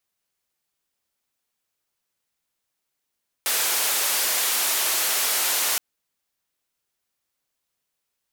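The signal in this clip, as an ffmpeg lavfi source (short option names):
-f lavfi -i "anoisesrc=c=white:d=2.32:r=44100:seed=1,highpass=f=480,lowpass=f=16000,volume=-16.6dB"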